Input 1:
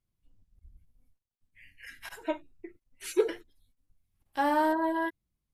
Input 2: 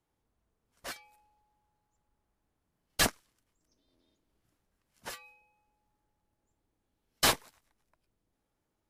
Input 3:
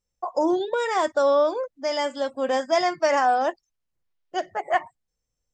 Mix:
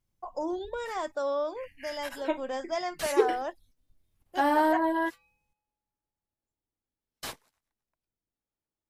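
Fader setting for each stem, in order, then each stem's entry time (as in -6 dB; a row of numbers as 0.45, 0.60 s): +2.0, -13.5, -10.5 dB; 0.00, 0.00, 0.00 s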